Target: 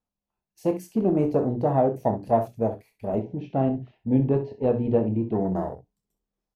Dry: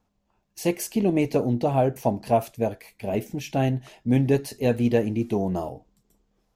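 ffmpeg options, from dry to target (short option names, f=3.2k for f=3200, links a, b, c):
-filter_complex "[0:a]bandreject=f=60:t=h:w=6,bandreject=f=120:t=h:w=6,bandreject=f=180:t=h:w=6,bandreject=f=240:t=h:w=6,bandreject=f=300:t=h:w=6,bandreject=f=360:t=h:w=6,bandreject=f=420:t=h:w=6,afwtdn=0.0224,asettb=1/sr,asplit=3[a][b][c];[a]atrim=end=3.194[d];[b]atrim=start=3.19:end=5.42,asetpts=PTS-STARTPTS,afade=t=in:d=0.004:c=qsin,afade=t=out:st=2.226:d=0.004:c=qsin,lowpass=f=3.8k:w=0.5412,lowpass=f=3.8k:w=1.3066[e];[c]atrim=start=5.416[f];[d][e]acrossfade=d=0.004:c1=hsin:c2=qsin[g];[g][f]acrossfade=d=0.004:c1=qsin:c2=hsin,aecho=1:1:27|65:0.335|0.251"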